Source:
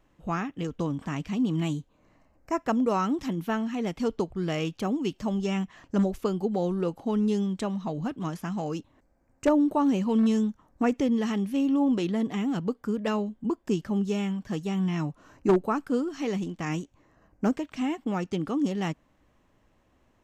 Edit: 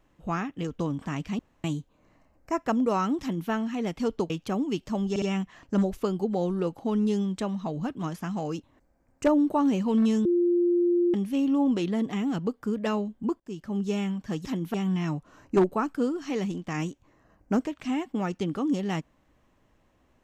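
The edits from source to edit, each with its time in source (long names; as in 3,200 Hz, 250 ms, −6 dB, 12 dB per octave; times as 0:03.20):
0:01.39–0:01.64: fill with room tone
0:03.21–0:03.50: duplicate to 0:14.66
0:04.30–0:04.63: remove
0:05.43: stutter 0.06 s, 3 plays
0:10.46–0:11.35: beep over 349 Hz −19.5 dBFS
0:13.61–0:14.12: fade in, from −22 dB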